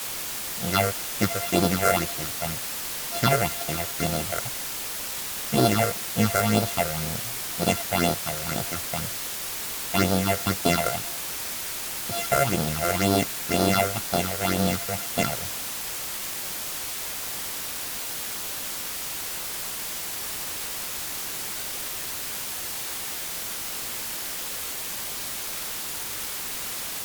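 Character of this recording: a buzz of ramps at a fixed pitch in blocks of 64 samples; phasing stages 6, 2 Hz, lowest notch 230–2300 Hz; a quantiser's noise floor 6-bit, dither triangular; WMA

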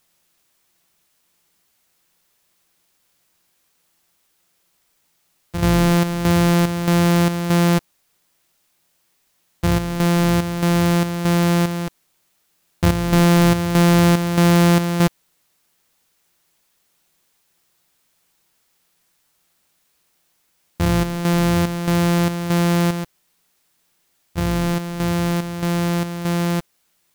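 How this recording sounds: a buzz of ramps at a fixed pitch in blocks of 256 samples; chopped level 1.6 Hz, depth 60%, duty 65%; a quantiser's noise floor 12-bit, dither triangular

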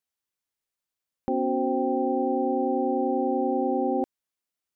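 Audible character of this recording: noise floor -88 dBFS; spectral tilt +5.5 dB/oct

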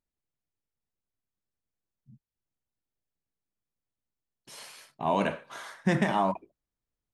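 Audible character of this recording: noise floor -91 dBFS; spectral tilt -5.0 dB/oct

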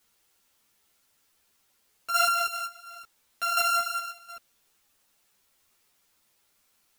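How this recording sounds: a buzz of ramps at a fixed pitch in blocks of 32 samples; chopped level 1.4 Hz, depth 65%, duty 75%; a quantiser's noise floor 12-bit, dither triangular; a shimmering, thickened sound

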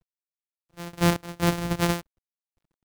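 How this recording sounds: a buzz of ramps at a fixed pitch in blocks of 256 samples; random-step tremolo 4.3 Hz, depth 90%; a quantiser's noise floor 12-bit, dither none

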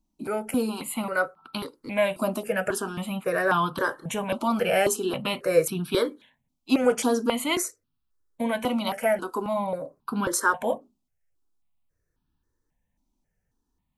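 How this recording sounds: notches that jump at a steady rate 3.7 Hz 460–2000 Hz

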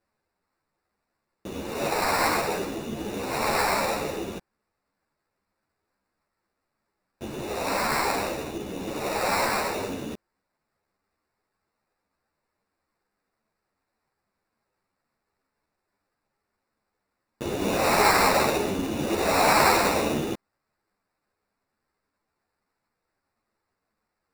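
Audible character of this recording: aliases and images of a low sample rate 3200 Hz, jitter 0%; a shimmering, thickened sound

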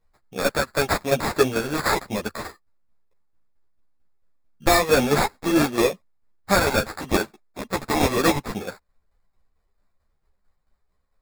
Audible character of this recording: tremolo saw down 4.5 Hz, depth 60%; aliases and images of a low sample rate 3000 Hz, jitter 0%; a shimmering, thickened sound

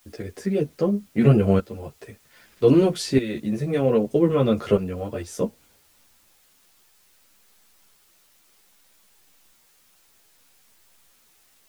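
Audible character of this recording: tremolo saw up 0.63 Hz, depth 75%; a quantiser's noise floor 10-bit, dither triangular; a shimmering, thickened sound

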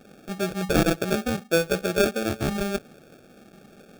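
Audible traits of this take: aliases and images of a low sample rate 1000 Hz, jitter 0%

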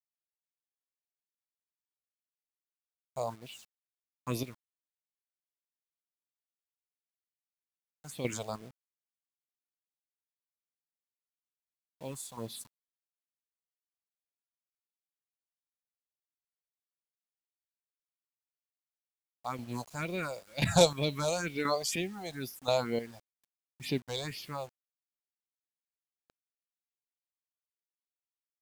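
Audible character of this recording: phasing stages 4, 2.1 Hz, lowest notch 260–1400 Hz; chopped level 0.97 Hz, depth 65%, duty 30%; a quantiser's noise floor 10-bit, dither none

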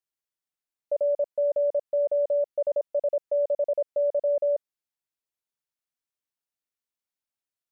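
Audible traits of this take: noise floor -92 dBFS; spectral tilt +8.0 dB/oct

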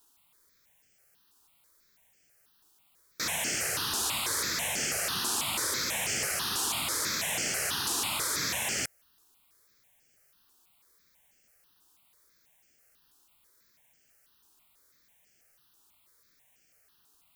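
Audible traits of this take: a quantiser's noise floor 12-bit, dither triangular; notches that jump at a steady rate 6.1 Hz 570–3800 Hz

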